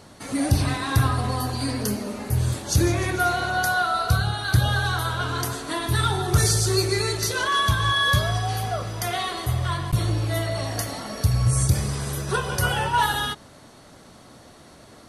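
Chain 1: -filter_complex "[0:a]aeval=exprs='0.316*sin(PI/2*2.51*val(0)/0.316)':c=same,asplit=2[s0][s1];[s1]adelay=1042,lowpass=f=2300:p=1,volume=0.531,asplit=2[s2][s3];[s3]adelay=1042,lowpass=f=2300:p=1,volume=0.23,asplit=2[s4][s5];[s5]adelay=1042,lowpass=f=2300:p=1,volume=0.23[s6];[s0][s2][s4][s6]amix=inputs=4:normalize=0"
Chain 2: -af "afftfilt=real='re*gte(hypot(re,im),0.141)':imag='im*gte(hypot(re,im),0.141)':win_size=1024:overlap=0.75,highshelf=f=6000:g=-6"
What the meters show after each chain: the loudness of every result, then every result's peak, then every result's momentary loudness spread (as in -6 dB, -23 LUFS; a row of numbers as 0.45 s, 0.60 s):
-14.5 LUFS, -25.0 LUFS; -5.5 dBFS, -9.0 dBFS; 6 LU, 9 LU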